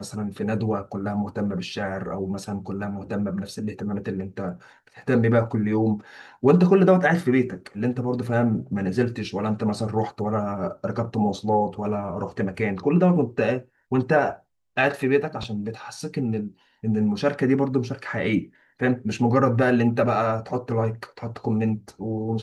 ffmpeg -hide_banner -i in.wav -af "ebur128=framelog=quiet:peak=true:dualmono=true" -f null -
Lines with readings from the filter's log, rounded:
Integrated loudness:
  I:         -21.2 LUFS
  Threshold: -31.3 LUFS
Loudness range:
  LRA:         7.2 LU
  Threshold: -41.1 LUFS
  LRA low:   -25.4 LUFS
  LRA high:  -18.2 LUFS
True peak:
  Peak:       -5.8 dBFS